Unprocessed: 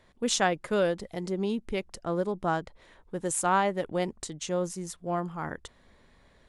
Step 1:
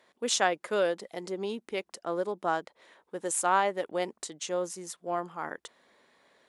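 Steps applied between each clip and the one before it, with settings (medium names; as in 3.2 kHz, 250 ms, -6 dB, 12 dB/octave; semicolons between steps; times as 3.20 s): high-pass 350 Hz 12 dB/octave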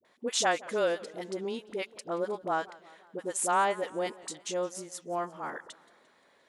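phase dispersion highs, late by 50 ms, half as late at 600 Hz; modulated delay 174 ms, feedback 55%, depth 152 cents, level -21 dB; trim -1 dB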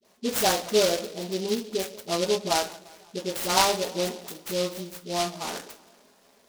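reverberation RT60 0.35 s, pre-delay 5 ms, DRR -2 dB; delay time shaken by noise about 4 kHz, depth 0.12 ms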